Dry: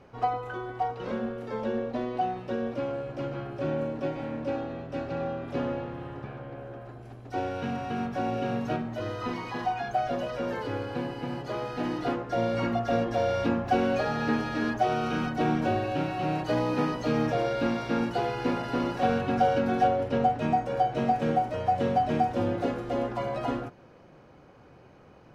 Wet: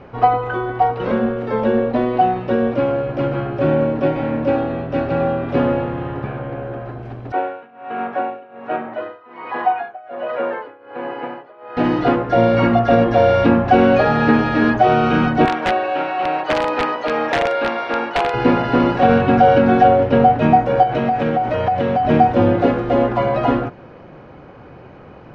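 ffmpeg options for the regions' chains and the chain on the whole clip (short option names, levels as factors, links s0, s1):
-filter_complex "[0:a]asettb=1/sr,asplit=3[s0][s1][s2];[s0]atrim=end=7.324[s3];[s1]atrim=start=7.32:end=11.77,asetpts=PTS-STARTPTS,afade=t=in:d=0.004:c=qsin,afade=t=out:st=4.446:d=0.004:c=qsin,tremolo=f=1.3:d=0.94,highpass=470,lowpass=2200[s4];[s2]atrim=start=11.766[s5];[s3][s4]acrossfade=d=0.004:c1=hsin:c2=qsin[s6];[s6][s5]acrossfade=d=0.004:c1=qsin:c2=hsin,asettb=1/sr,asplit=3[s7][s8][s9];[s7]atrim=end=15.454[s10];[s8]atrim=start=15.45:end=18.34,asetpts=PTS-STARTPTS,afade=t=in:d=0.004:c=qsin,afade=t=out:st=2.886:d=0.004:c=qsin,highpass=590,aemphasis=mode=reproduction:type=cd,aeval=exprs='(mod(14.1*val(0)+1,2)-1)/14.1':c=same[s11];[s9]atrim=start=18.336[s12];[s10][s11]acrossfade=d=0.004:c1=hsin:c2=qsin[s13];[s13][s12]acrossfade=d=0.004:c1=qsin:c2=hsin,asettb=1/sr,asplit=3[s14][s15][s16];[s14]atrim=end=20.834[s17];[s15]atrim=start=20.83:end=22.05,asetpts=PTS-STARTPTS,afade=t=in:d=0.004:c=qsin,afade=t=out:st=1.216:d=0.004:c=qsin,equalizer=f=2300:w=0.33:g=4,acompressor=threshold=0.0398:ratio=5:attack=3.2:release=140:knee=1:detection=peak[s18];[s16]atrim=start=22.046[s19];[s17][s18]acrossfade=d=0.004:c1=hsin:c2=qsin[s20];[s20][s19]acrossfade=d=0.004:c1=qsin:c2=hsin,lowpass=3000,alimiter=level_in=5.31:limit=0.891:release=50:level=0:latency=1,volume=0.891"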